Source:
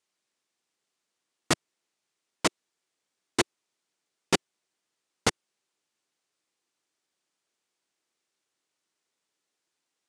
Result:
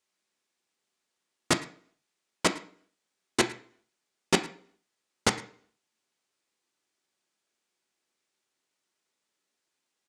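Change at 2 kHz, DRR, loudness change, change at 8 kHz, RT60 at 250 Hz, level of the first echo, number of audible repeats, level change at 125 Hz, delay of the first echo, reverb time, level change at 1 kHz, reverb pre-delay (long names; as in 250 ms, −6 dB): +1.5 dB, 6.5 dB, +0.5 dB, 0.0 dB, 0.55 s, −20.5 dB, 1, +0.5 dB, 109 ms, 0.50 s, +0.5 dB, 3 ms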